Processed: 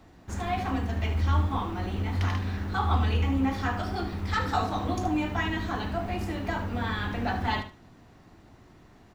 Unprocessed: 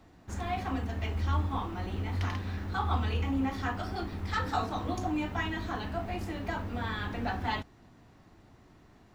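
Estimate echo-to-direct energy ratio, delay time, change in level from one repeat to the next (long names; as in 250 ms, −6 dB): −10.5 dB, 75 ms, −14.5 dB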